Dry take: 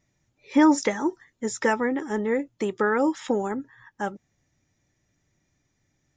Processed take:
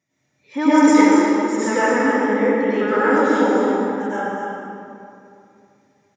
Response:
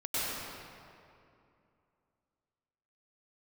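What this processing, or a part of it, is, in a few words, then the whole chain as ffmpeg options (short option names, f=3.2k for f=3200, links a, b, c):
stadium PA: -filter_complex "[0:a]asettb=1/sr,asplit=3[a][b][c];[a]atrim=end=2.114[d];[b]atrim=start=2.11:end=2.73,asetpts=PTS-STARTPTS,afade=t=in:d=0.004:c=qsin,afade=t=out:st=0.616:d=0.004:c=qsin,lowpass=f=5k:w=0.5412,lowpass=f=5k:w=1.3066[e];[c]atrim=start=2.726[f];[d][e]acrossfade=d=0.004:c1=hsin:c2=qsin[g];[g][f]acrossfade=d=0.004:c1=qsin:c2=hsin,highpass=f=120:w=0.5412,highpass=f=120:w=1.3066,equalizer=f=1.9k:t=o:w=2.3:g=3,aecho=1:1:242|279.9:0.316|0.282[h];[1:a]atrim=start_sample=2205[i];[h][i]afir=irnorm=-1:irlink=0,volume=-2dB"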